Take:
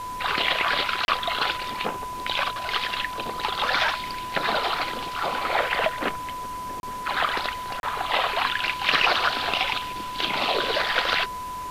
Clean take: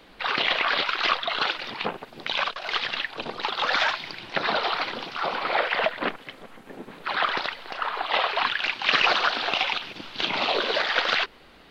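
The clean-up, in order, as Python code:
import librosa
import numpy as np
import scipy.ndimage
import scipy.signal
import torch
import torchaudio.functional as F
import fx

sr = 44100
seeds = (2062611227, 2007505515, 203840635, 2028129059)

y = fx.fix_declip(x, sr, threshold_db=-9.0)
y = fx.notch(y, sr, hz=1000.0, q=30.0)
y = fx.fix_interpolate(y, sr, at_s=(1.05, 6.8, 7.8), length_ms=31.0)
y = fx.noise_reduce(y, sr, print_start_s=6.18, print_end_s=6.68, reduce_db=12.0)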